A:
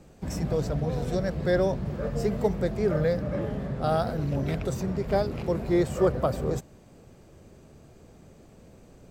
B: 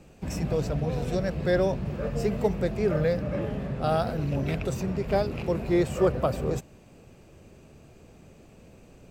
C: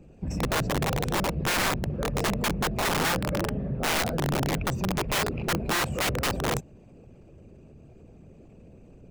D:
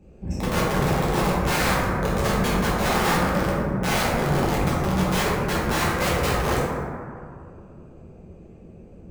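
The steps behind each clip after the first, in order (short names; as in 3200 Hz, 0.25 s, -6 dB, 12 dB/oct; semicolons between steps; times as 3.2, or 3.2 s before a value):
bell 2600 Hz +8 dB 0.33 oct
formant sharpening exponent 1.5; wrapped overs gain 22 dB; gain +1.5 dB
plate-style reverb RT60 2.3 s, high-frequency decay 0.3×, DRR -8.5 dB; gain -4.5 dB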